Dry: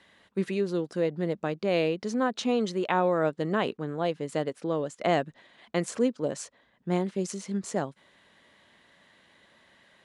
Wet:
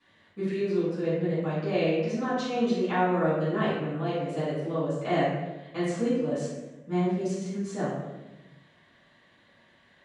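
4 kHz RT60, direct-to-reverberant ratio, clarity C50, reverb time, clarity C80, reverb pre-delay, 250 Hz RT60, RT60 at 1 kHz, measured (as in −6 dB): 0.70 s, −14.0 dB, −0.5 dB, 1.0 s, 3.0 dB, 4 ms, 1.5 s, 0.90 s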